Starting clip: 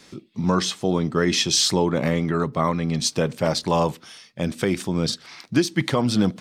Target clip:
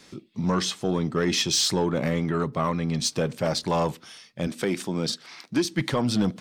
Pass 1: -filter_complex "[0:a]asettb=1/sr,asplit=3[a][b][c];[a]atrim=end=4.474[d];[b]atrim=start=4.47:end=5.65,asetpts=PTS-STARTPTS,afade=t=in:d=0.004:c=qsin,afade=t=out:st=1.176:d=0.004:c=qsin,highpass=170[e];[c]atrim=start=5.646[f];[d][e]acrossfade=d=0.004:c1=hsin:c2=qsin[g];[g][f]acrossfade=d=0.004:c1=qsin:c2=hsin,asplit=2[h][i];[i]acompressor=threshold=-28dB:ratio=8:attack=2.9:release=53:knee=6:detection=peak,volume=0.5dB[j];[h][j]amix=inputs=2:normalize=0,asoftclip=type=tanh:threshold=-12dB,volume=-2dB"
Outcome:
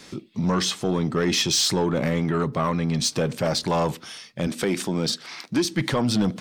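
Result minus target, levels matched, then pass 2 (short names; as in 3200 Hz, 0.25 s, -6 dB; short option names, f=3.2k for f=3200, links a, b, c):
compressor: peak gain reduction +14.5 dB
-filter_complex "[0:a]asettb=1/sr,asplit=3[a][b][c];[a]atrim=end=4.474[d];[b]atrim=start=4.47:end=5.65,asetpts=PTS-STARTPTS,afade=t=in:d=0.004:c=qsin,afade=t=out:st=1.176:d=0.004:c=qsin,highpass=170[e];[c]atrim=start=5.646[f];[d][e]acrossfade=d=0.004:c1=hsin:c2=qsin[g];[g][f]acrossfade=d=0.004:c1=qsin:c2=hsin,asoftclip=type=tanh:threshold=-12dB,volume=-2dB"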